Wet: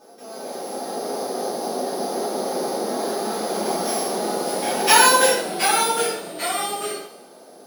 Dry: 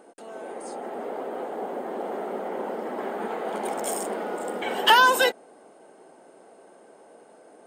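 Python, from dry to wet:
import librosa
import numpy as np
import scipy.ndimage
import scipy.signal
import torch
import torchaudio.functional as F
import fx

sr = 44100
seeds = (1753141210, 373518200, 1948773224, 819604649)

y = np.r_[np.sort(x[:len(x) // 8 * 8].reshape(-1, 8), axis=1).ravel(), x[len(x) // 8 * 8:]]
y = fx.rev_double_slope(y, sr, seeds[0], early_s=0.51, late_s=2.0, knee_db=-26, drr_db=-9.5)
y = fx.echo_pitch(y, sr, ms=125, semitones=-2, count=2, db_per_echo=-6.0)
y = F.gain(torch.from_numpy(y), -5.5).numpy()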